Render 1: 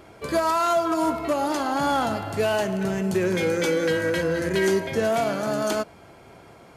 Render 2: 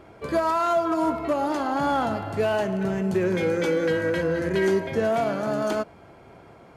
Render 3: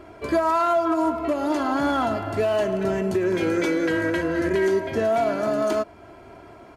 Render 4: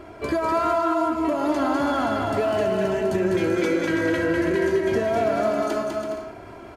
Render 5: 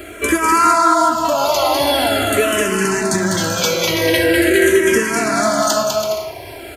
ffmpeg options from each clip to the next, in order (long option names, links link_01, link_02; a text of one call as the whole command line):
ffmpeg -i in.wav -af "highshelf=frequency=3500:gain=-11" out.wav
ffmpeg -i in.wav -af "aecho=1:1:3:0.53,alimiter=limit=-16dB:level=0:latency=1:release=303,volume=2.5dB" out.wav
ffmpeg -i in.wav -filter_complex "[0:a]acompressor=threshold=-24dB:ratio=4,asplit=2[link_01][link_02];[link_02]aecho=0:1:200|330|414.5|469.4|505.1:0.631|0.398|0.251|0.158|0.1[link_03];[link_01][link_03]amix=inputs=2:normalize=0,volume=2.5dB" out.wav
ffmpeg -i in.wav -filter_complex "[0:a]acrossover=split=340[link_01][link_02];[link_02]crystalizer=i=7:c=0[link_03];[link_01][link_03]amix=inputs=2:normalize=0,asplit=2[link_04][link_05];[link_05]afreqshift=-0.44[link_06];[link_04][link_06]amix=inputs=2:normalize=1,volume=8.5dB" out.wav